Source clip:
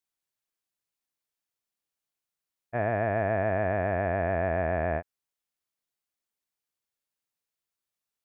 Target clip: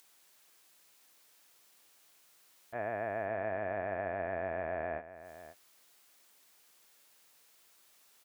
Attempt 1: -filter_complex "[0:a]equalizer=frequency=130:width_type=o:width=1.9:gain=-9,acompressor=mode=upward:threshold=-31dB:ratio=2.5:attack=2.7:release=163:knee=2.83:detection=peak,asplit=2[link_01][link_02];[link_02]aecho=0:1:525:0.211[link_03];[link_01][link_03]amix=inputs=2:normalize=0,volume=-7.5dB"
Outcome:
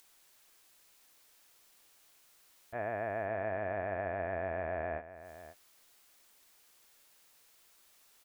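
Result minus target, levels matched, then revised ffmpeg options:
125 Hz band +3.0 dB
-filter_complex "[0:a]highpass=99,equalizer=frequency=130:width_type=o:width=1.9:gain=-9,acompressor=mode=upward:threshold=-31dB:ratio=2.5:attack=2.7:release=163:knee=2.83:detection=peak,asplit=2[link_01][link_02];[link_02]aecho=0:1:525:0.211[link_03];[link_01][link_03]amix=inputs=2:normalize=0,volume=-7.5dB"

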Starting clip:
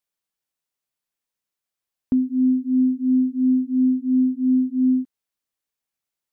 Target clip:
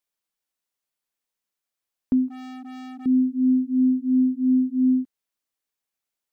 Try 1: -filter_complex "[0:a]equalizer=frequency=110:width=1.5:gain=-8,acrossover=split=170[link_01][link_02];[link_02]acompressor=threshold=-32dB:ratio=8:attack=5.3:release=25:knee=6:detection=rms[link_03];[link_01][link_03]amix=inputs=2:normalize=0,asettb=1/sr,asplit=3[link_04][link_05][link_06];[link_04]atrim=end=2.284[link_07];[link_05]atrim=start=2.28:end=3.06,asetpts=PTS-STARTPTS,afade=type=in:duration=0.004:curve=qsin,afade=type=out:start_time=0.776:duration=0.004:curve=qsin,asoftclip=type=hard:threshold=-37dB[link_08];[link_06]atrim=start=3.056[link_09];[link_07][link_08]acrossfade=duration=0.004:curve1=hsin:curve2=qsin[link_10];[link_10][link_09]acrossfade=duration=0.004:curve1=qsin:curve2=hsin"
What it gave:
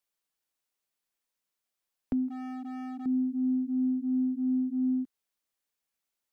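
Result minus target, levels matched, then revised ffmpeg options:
downward compressor: peak gain reduction +13 dB
-filter_complex "[0:a]equalizer=frequency=110:width=1.5:gain=-8,asettb=1/sr,asplit=3[link_01][link_02][link_03];[link_01]atrim=end=2.284[link_04];[link_02]atrim=start=2.28:end=3.06,asetpts=PTS-STARTPTS,afade=type=in:duration=0.004:curve=qsin,afade=type=out:start_time=0.776:duration=0.004:curve=qsin,asoftclip=type=hard:threshold=-37dB[link_05];[link_03]atrim=start=3.056[link_06];[link_04][link_05]acrossfade=duration=0.004:curve1=hsin:curve2=qsin[link_07];[link_07][link_06]acrossfade=duration=0.004:curve1=qsin:curve2=hsin"

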